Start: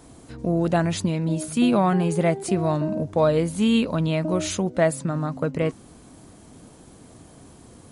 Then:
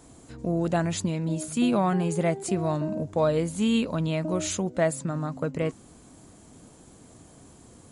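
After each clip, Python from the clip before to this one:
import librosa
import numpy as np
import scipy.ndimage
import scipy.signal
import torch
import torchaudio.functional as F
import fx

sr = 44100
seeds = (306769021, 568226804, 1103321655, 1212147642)

y = fx.peak_eq(x, sr, hz=7200.0, db=7.0, octaves=0.3)
y = F.gain(torch.from_numpy(y), -4.0).numpy()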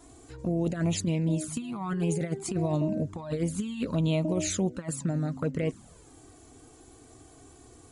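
y = fx.over_compress(x, sr, threshold_db=-26.0, ratio=-0.5)
y = fx.env_flanger(y, sr, rest_ms=3.1, full_db=-22.0)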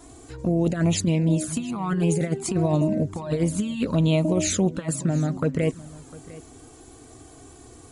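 y = x + 10.0 ** (-19.5 / 20.0) * np.pad(x, (int(702 * sr / 1000.0), 0))[:len(x)]
y = F.gain(torch.from_numpy(y), 6.0).numpy()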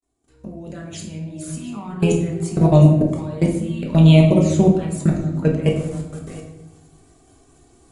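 y = fx.fade_in_head(x, sr, length_s=1.86)
y = fx.level_steps(y, sr, step_db=21)
y = fx.room_shoebox(y, sr, seeds[0], volume_m3=290.0, walls='mixed', distance_m=1.2)
y = F.gain(torch.from_numpy(y), 6.5).numpy()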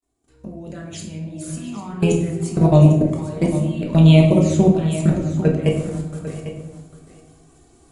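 y = x + 10.0 ** (-12.5 / 20.0) * np.pad(x, (int(799 * sr / 1000.0), 0))[:len(x)]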